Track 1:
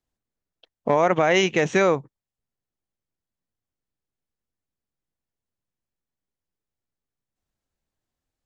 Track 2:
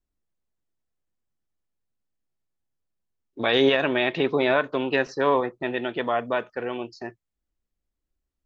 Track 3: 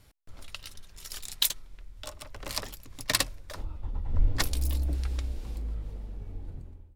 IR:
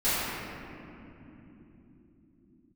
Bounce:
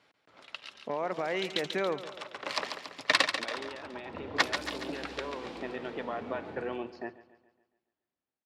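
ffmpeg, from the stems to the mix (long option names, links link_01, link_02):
-filter_complex "[0:a]volume=-14.5dB,asplit=3[link_01][link_02][link_03];[link_02]volume=-14.5dB[link_04];[1:a]acompressor=threshold=-27dB:ratio=6,volume=-17dB,asplit=2[link_05][link_06];[link_06]volume=-17.5dB[link_07];[2:a]highpass=frequency=520:poles=1,volume=2.5dB,asplit=2[link_08][link_09];[link_09]volume=-7.5dB[link_10];[link_03]apad=whole_len=306706[link_11];[link_08][link_11]sidechaincompress=threshold=-44dB:ratio=8:attack=8.2:release=216[link_12];[link_04][link_07][link_10]amix=inputs=3:normalize=0,aecho=0:1:140|280|420|560|700|840|980:1|0.51|0.26|0.133|0.0677|0.0345|0.0176[link_13];[link_01][link_05][link_12][link_13]amix=inputs=4:normalize=0,dynaudnorm=framelen=380:gausssize=9:maxgain=15dB,highpass=190,lowpass=3100"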